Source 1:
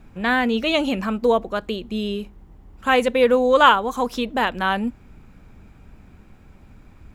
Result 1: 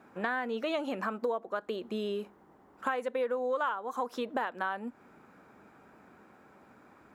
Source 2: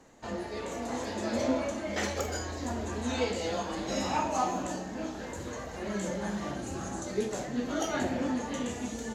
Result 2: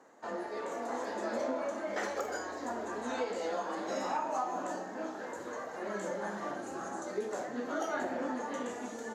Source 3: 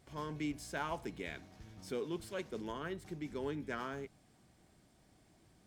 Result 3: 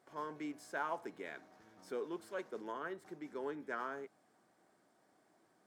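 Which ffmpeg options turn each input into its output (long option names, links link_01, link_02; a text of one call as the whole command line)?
ffmpeg -i in.wav -af "highpass=350,highshelf=frequency=2000:width_type=q:width=1.5:gain=-7,acompressor=threshold=-30dB:ratio=6" out.wav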